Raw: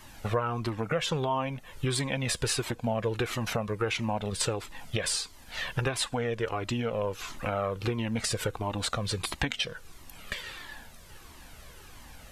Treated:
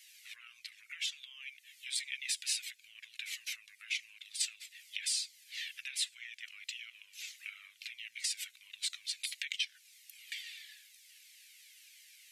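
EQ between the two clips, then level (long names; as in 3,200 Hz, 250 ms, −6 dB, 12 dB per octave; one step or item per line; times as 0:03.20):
elliptic high-pass filter 2,100 Hz, stop band 60 dB
−3.0 dB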